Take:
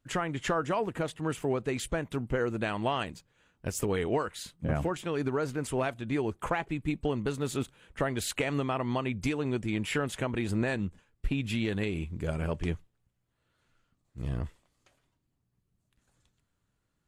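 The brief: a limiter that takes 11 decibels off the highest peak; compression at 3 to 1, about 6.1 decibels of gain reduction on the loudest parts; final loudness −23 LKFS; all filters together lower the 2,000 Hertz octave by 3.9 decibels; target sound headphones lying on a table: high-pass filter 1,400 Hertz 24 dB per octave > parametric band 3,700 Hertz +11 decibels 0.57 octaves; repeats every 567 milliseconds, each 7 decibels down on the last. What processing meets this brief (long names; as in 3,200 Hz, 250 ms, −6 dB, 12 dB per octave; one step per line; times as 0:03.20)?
parametric band 2,000 Hz −6 dB
downward compressor 3 to 1, threshold −32 dBFS
brickwall limiter −31 dBFS
high-pass filter 1,400 Hz 24 dB per octave
parametric band 3,700 Hz +11 dB 0.57 octaves
repeating echo 567 ms, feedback 45%, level −7 dB
level +21 dB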